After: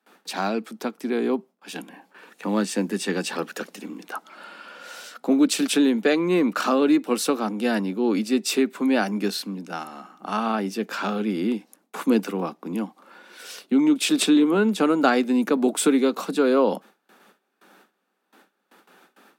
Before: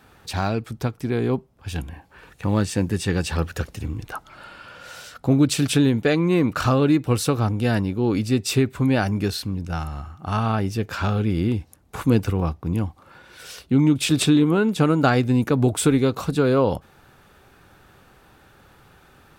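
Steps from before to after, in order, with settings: gate with hold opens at -41 dBFS; steep high-pass 190 Hz 72 dB/oct

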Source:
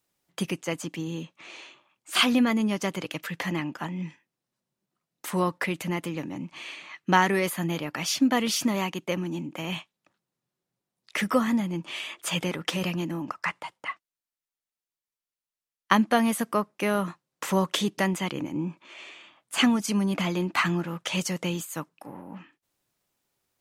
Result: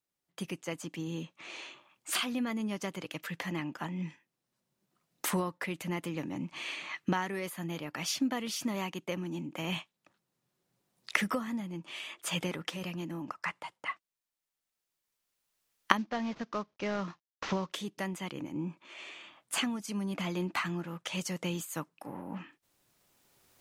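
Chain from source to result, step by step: 15.97–17.72 CVSD 32 kbps; recorder AGC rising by 9.1 dB/s; gain -13 dB

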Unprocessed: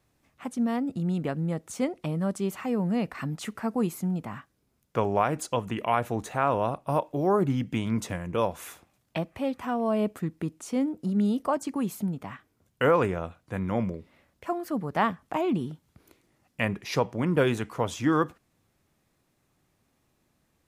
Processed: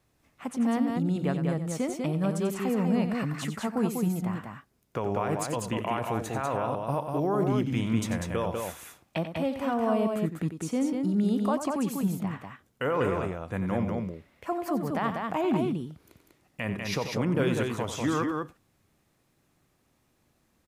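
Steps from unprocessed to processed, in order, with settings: limiter -19 dBFS, peak gain reduction 8 dB; on a send: loudspeakers at several distances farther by 31 m -10 dB, 67 m -4 dB

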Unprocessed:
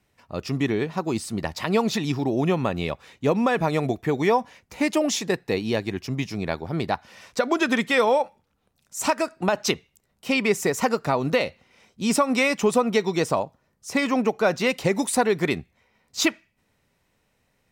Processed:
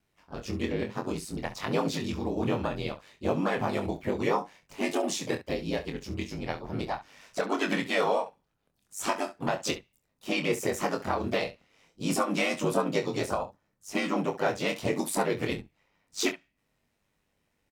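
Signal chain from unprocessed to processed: harmoniser +3 st -12 dB, +4 st -8 dB; ring modulator 50 Hz; early reflections 25 ms -6.5 dB, 68 ms -14.5 dB; gain -5.5 dB

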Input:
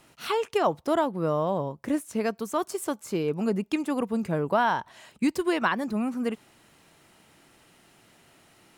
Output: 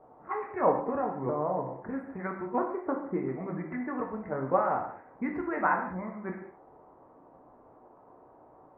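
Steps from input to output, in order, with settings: repeated pitch sweeps -4 st, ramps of 1.29 s; crackle 67/s -37 dBFS; elliptic low-pass 2000 Hz, stop band 40 dB; low-pass opened by the level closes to 450 Hz, open at -24.5 dBFS; harmonic-percussive split harmonic -10 dB; band noise 260–990 Hz -59 dBFS; non-linear reverb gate 0.24 s falling, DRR 1 dB

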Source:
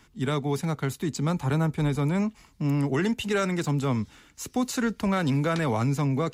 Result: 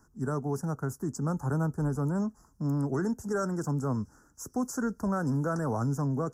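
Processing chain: elliptic band-stop 1500–5600 Hz, stop band 40 dB; gain -4 dB

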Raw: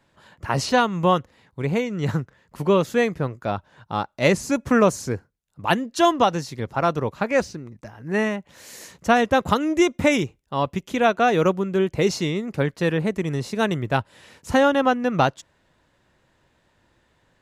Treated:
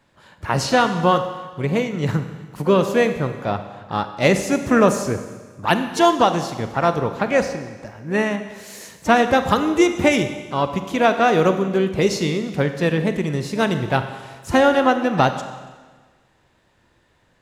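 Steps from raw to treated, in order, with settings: Schroeder reverb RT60 1.4 s, combs from 31 ms, DRR 8.5 dB; harmoniser +5 st -15 dB; gain +2 dB

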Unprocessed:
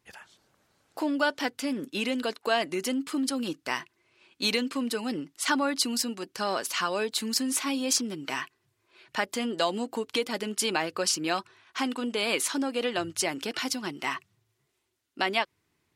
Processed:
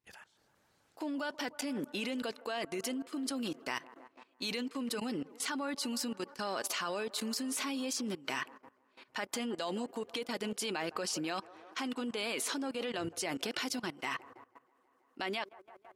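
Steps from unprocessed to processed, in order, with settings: band-limited delay 0.161 s, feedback 74%, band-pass 700 Hz, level -18 dB; level quantiser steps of 18 dB

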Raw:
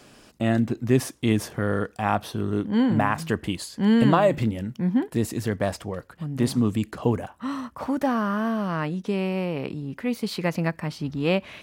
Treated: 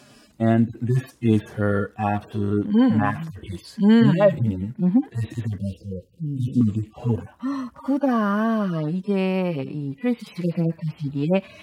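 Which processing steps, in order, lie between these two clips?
median-filter separation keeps harmonic; 5.58–6.61 Chebyshev band-stop 510–2800 Hz, order 4; gain +4 dB

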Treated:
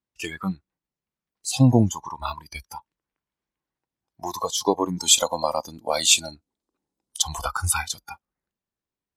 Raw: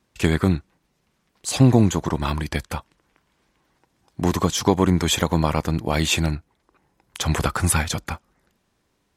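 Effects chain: spectral noise reduction 22 dB; 4.97–7.22 graphic EQ 125/250/500/2000/4000/8000 Hz -4/+10/+3/-5/+6/+10 dB; gain -1 dB

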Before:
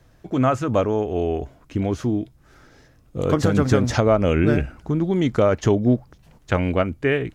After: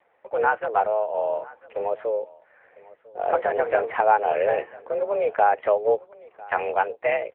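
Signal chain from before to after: 0.81–1.4 notch comb 920 Hz; on a send: echo 1 s -22 dB; on the sum: mistuned SSB +210 Hz 240–2400 Hz; AMR-NB 6.7 kbps 8000 Hz

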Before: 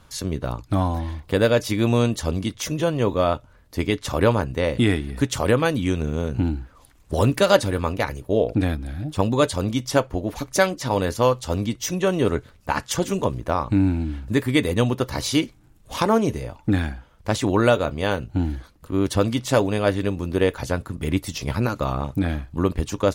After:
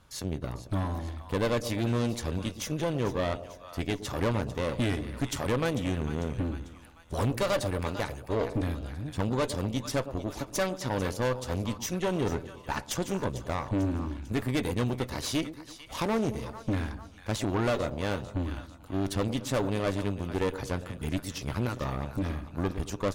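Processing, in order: split-band echo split 770 Hz, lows 0.112 s, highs 0.446 s, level -14 dB; tube stage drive 19 dB, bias 0.7; gain -3.5 dB

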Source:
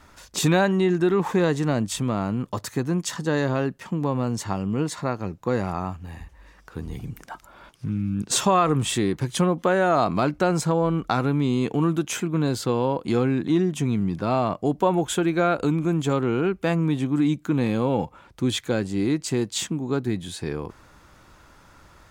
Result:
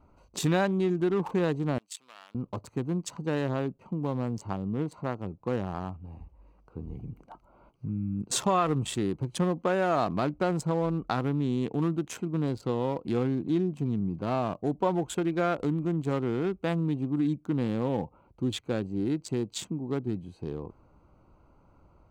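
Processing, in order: Wiener smoothing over 25 samples; 1.78–2.35 Bessel high-pass 2600 Hz, order 2; gain -5.5 dB

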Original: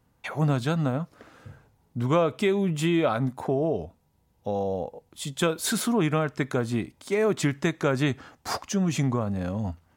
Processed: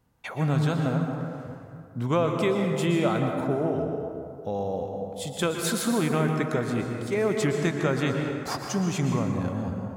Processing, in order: plate-style reverb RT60 2.4 s, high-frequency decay 0.45×, pre-delay 0.105 s, DRR 2.5 dB; gain -2 dB

